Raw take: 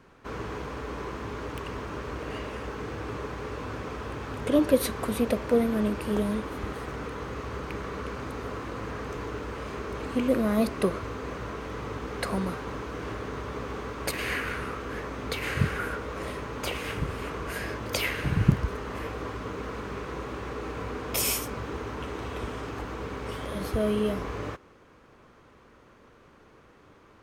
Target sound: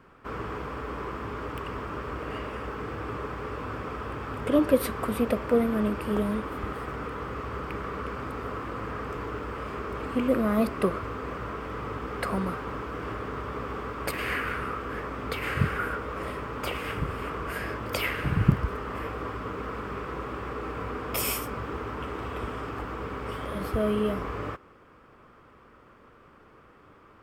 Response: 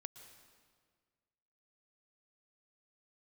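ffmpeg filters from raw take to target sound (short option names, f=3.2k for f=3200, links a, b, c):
-af "equalizer=f=1.25k:t=o:w=0.33:g=6,equalizer=f=4k:t=o:w=0.33:g=-7,equalizer=f=6.3k:t=o:w=0.33:g=-10,equalizer=f=10k:t=o:w=0.33:g=-5"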